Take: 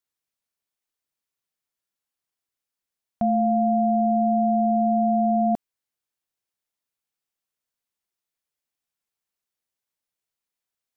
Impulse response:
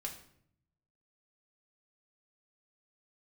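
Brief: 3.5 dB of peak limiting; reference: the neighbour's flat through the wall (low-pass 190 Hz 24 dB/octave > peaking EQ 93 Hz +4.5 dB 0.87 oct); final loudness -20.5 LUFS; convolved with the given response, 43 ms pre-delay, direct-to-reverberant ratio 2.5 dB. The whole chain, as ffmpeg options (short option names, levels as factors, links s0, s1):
-filter_complex "[0:a]alimiter=limit=0.126:level=0:latency=1,asplit=2[s0][s1];[1:a]atrim=start_sample=2205,adelay=43[s2];[s1][s2]afir=irnorm=-1:irlink=0,volume=0.841[s3];[s0][s3]amix=inputs=2:normalize=0,lowpass=f=190:w=0.5412,lowpass=f=190:w=1.3066,equalizer=f=93:t=o:w=0.87:g=4.5,volume=5.62"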